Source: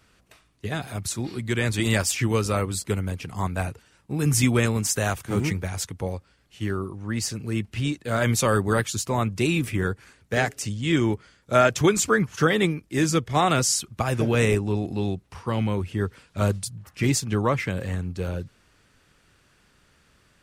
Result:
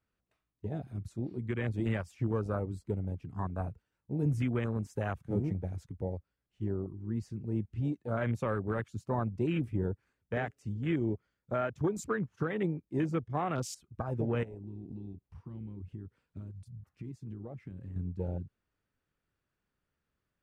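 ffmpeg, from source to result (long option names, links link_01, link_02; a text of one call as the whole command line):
ffmpeg -i in.wav -filter_complex "[0:a]asettb=1/sr,asplit=3[link_01][link_02][link_03];[link_01]atrim=end=14.434[link_04];[link_02]atrim=start=14.43:end=17.96,asetpts=PTS-STARTPTS,afade=type=in:duration=0.004:curve=qsin,afade=type=out:start_time=3.526:duration=0.004:curve=qsin,acompressor=threshold=-31dB:ratio=10:attack=3.2:release=140:knee=1:detection=peak[link_05];[link_03]atrim=start=17.956[link_06];[link_04][link_05]acrossfade=duration=0.004:curve1=hsin:curve2=qsin[link_07];[link_07][link_06]acrossfade=duration=0.004:curve1=qsin:curve2=hsin,afwtdn=0.0398,alimiter=limit=-15dB:level=0:latency=1:release=317,highshelf=frequency=2700:gain=-11,volume=-6dB" out.wav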